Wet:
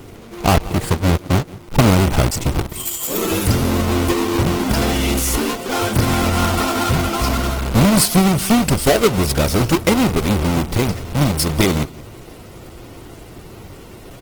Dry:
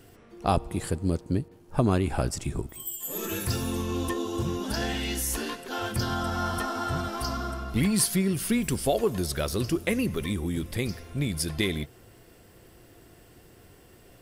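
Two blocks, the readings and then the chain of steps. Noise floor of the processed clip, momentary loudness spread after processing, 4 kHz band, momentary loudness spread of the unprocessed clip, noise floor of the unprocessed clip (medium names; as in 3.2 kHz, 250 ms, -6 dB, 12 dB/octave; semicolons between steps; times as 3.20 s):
-39 dBFS, 7 LU, +11.5 dB, 7 LU, -54 dBFS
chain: square wave that keeps the level; band-stop 1.7 kHz, Q 9.4; in parallel at 0 dB: compression 6:1, threshold -33 dBFS, peak gain reduction 17 dB; on the sum: delay 176 ms -20.5 dB; trim +5 dB; Opus 16 kbps 48 kHz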